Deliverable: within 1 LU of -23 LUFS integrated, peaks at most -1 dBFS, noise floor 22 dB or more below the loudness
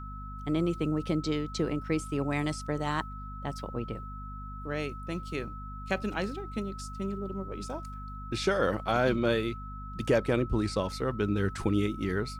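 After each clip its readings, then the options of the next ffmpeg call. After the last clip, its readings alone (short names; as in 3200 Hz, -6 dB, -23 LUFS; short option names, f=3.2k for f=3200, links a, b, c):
hum 50 Hz; harmonics up to 250 Hz; hum level -39 dBFS; steady tone 1300 Hz; tone level -43 dBFS; loudness -31.5 LUFS; peak -14.0 dBFS; loudness target -23.0 LUFS
-> -af "bandreject=f=50:t=h:w=6,bandreject=f=100:t=h:w=6,bandreject=f=150:t=h:w=6,bandreject=f=200:t=h:w=6,bandreject=f=250:t=h:w=6"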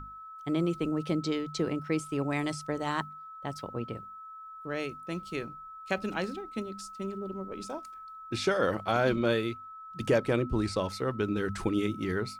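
hum none; steady tone 1300 Hz; tone level -43 dBFS
-> -af "bandreject=f=1.3k:w=30"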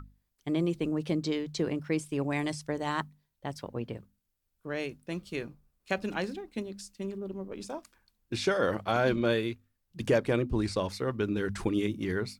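steady tone none; loudness -32.0 LUFS; peak -14.0 dBFS; loudness target -23.0 LUFS
-> -af "volume=9dB"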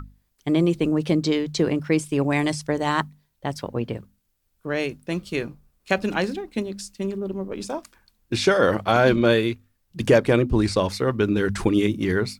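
loudness -23.0 LUFS; peak -5.0 dBFS; noise floor -71 dBFS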